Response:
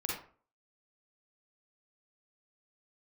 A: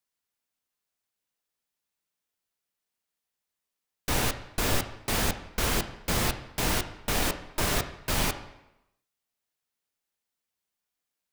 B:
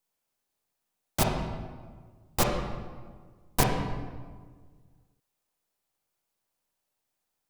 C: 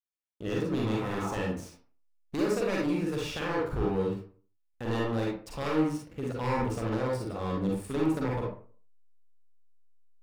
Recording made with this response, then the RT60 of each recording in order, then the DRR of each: C; 0.95, 1.6, 0.45 seconds; 7.5, 0.0, −3.5 decibels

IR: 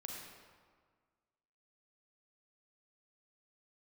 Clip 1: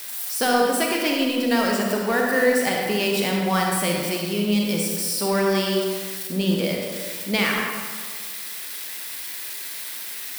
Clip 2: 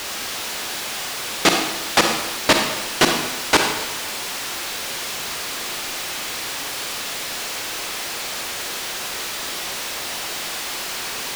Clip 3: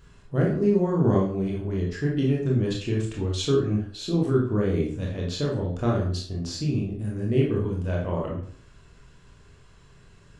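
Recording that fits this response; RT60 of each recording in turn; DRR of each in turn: 1; 1.7, 1.0, 0.55 seconds; −1.0, 3.0, −3.0 decibels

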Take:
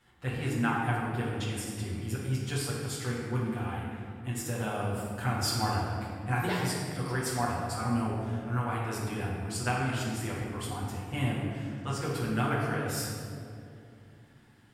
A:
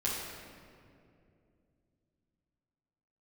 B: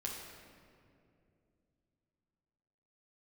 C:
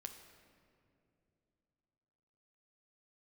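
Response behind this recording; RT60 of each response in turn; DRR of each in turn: A; 2.5, 2.5, 2.7 seconds; −8.0, −3.0, 5.0 decibels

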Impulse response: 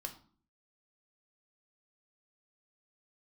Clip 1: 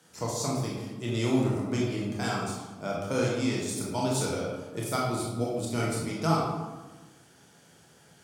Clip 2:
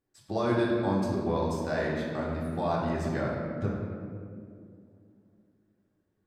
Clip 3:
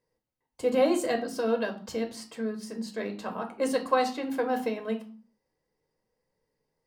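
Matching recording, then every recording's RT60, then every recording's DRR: 3; 1.2, 2.3, 0.50 seconds; −4.0, −5.0, 4.0 decibels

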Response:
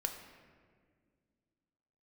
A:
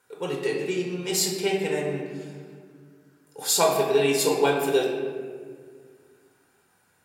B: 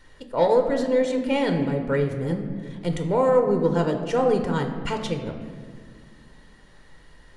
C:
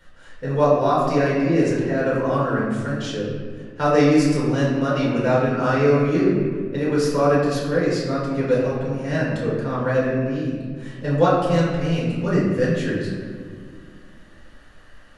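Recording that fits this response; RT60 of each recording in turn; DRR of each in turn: B; 1.9, 1.9, 1.9 seconds; −2.0, 4.0, −8.0 decibels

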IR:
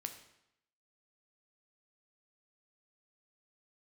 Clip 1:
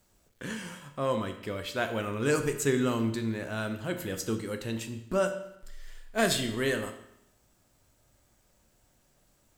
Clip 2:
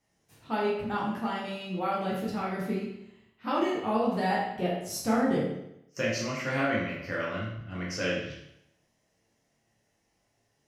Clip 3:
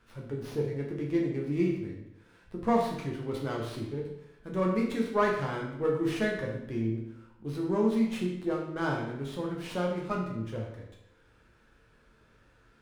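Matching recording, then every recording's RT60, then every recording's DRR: 1; 0.80, 0.80, 0.80 seconds; 6.0, −6.0, −2.0 decibels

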